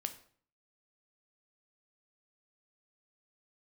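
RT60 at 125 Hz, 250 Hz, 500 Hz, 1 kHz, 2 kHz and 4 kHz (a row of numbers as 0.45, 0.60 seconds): 0.60, 0.60, 0.55, 0.50, 0.45, 0.40 seconds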